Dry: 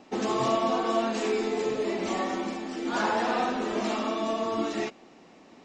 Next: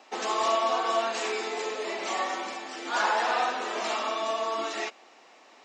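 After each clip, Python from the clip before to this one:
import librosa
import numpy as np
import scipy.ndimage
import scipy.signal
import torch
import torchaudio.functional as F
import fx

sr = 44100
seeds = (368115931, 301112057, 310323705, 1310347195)

y = scipy.signal.sosfilt(scipy.signal.butter(2, 700.0, 'highpass', fs=sr, output='sos'), x)
y = F.gain(torch.from_numpy(y), 3.5).numpy()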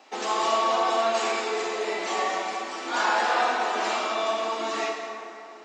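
y = fx.rev_plate(x, sr, seeds[0], rt60_s=2.7, hf_ratio=0.55, predelay_ms=0, drr_db=0.0)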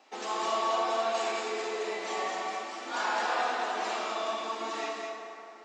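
y = x + 10.0 ** (-6.0 / 20.0) * np.pad(x, (int(210 * sr / 1000.0), 0))[:len(x)]
y = F.gain(torch.from_numpy(y), -7.0).numpy()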